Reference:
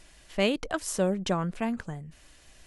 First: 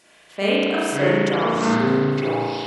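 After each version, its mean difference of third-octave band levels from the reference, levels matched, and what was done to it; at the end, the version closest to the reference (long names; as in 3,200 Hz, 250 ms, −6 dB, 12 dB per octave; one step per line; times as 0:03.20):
12.5 dB: high-pass filter 260 Hz 12 dB per octave
delay with pitch and tempo change per echo 387 ms, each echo −6 semitones, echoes 2
spring reverb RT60 2.1 s, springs 35 ms, chirp 40 ms, DRR −9 dB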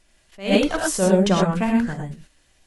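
8.5 dB: noise gate −47 dBFS, range −14 dB
reverb whose tail is shaped and stops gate 140 ms rising, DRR 0 dB
level that may rise only so fast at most 180 dB per second
level +6.5 dB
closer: second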